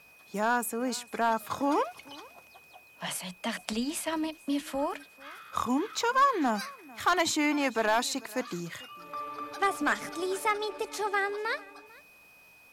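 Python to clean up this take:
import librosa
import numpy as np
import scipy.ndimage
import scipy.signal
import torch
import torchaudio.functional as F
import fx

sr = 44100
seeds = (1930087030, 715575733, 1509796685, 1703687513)

y = fx.fix_declip(x, sr, threshold_db=-17.0)
y = fx.notch(y, sr, hz=2500.0, q=30.0)
y = fx.fix_echo_inverse(y, sr, delay_ms=445, level_db=-23.0)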